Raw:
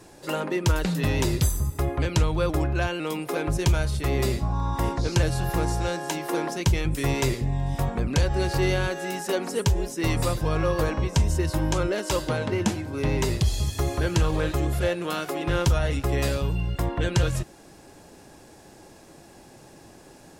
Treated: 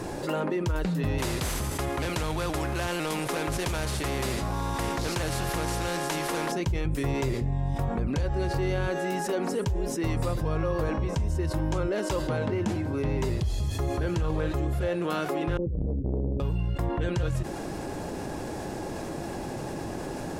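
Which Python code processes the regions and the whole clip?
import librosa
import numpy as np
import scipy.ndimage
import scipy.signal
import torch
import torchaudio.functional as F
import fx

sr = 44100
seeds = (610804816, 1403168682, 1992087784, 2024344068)

y = fx.chain(x, sr, fx.cvsd(bps=64000),
    fx.spectral_comp(ratio=2.0), at=(1.18, 6.52))
y = fx.chain(y, sr, fx.steep_lowpass(hz=500.0, slope=96),
    fx.over_compress(threshold_db=-23.0, ratio=-0.5),
    fx.transformer_sat(knee_hz=250.0), at=(15.57, 16.4))
y = fx.high_shelf(y, sr, hz=2100.0, db=-9.0)
y = fx.env_flatten(y, sr, amount_pct=70)
y = F.gain(torch.from_numpy(y), -8.0).numpy()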